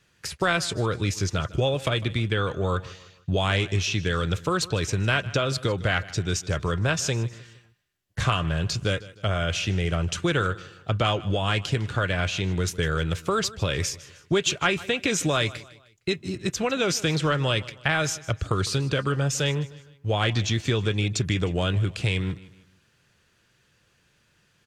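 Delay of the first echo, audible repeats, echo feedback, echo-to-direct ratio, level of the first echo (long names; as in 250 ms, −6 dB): 154 ms, 3, 41%, −18.0 dB, −19.0 dB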